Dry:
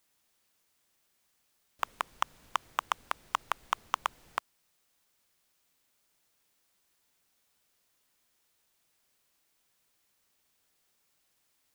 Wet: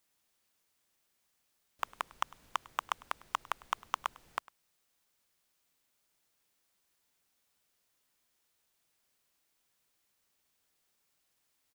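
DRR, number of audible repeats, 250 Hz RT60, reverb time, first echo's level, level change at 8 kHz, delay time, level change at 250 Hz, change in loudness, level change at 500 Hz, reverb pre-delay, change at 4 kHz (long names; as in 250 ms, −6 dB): no reverb audible, 1, no reverb audible, no reverb audible, −22.5 dB, −3.5 dB, 102 ms, −3.5 dB, −3.5 dB, −3.5 dB, no reverb audible, −3.5 dB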